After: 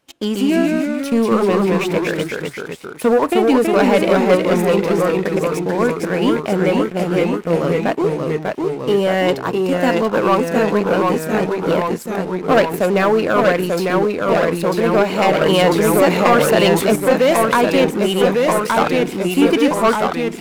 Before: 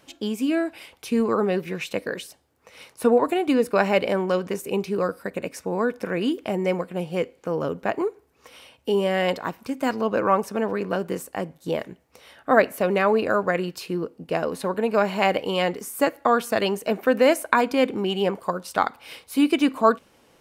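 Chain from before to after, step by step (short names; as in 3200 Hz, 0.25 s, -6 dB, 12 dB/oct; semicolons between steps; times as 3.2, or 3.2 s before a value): sample leveller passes 3; echoes that change speed 0.128 s, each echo -1 st, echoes 3; 15.41–16.96 fast leveller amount 50%; gain -4.5 dB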